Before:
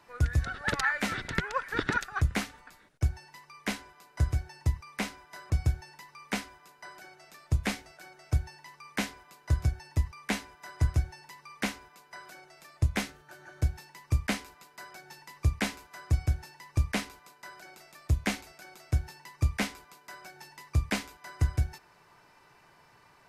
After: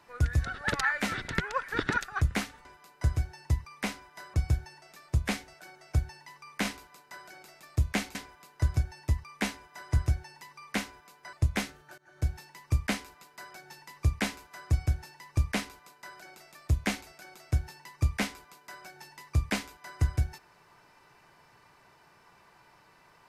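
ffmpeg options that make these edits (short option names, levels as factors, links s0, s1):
-filter_complex "[0:a]asplit=7[s0][s1][s2][s3][s4][s5][s6];[s0]atrim=end=2.652[s7];[s1]atrim=start=3.808:end=5.982[s8];[s2]atrim=start=7.198:end=9.032[s9];[s3]atrim=start=16.968:end=18.472[s10];[s4]atrim=start=9.028:end=12.212[s11];[s5]atrim=start=12.728:end=13.38,asetpts=PTS-STARTPTS,afade=t=out:st=0.648:d=0.004:c=hsin:silence=0.0630957[s12];[s6]atrim=start=13.38,asetpts=PTS-STARTPTS,afade=t=in:d=0.33:silence=0.0630957[s13];[s7][s8]acrossfade=d=0.004:c1=hsin:c2=hsin[s14];[s14][s9]acrossfade=d=0.004:c1=hsin:c2=hsin[s15];[s15][s10]acrossfade=d=0.004:c1=hsin:c2=hsin[s16];[s16][s11]acrossfade=d=0.004:c1=hsin:c2=hsin[s17];[s12][s13]concat=n=2:v=0:a=1[s18];[s17][s18]acrossfade=d=0.004:c1=hsin:c2=hsin"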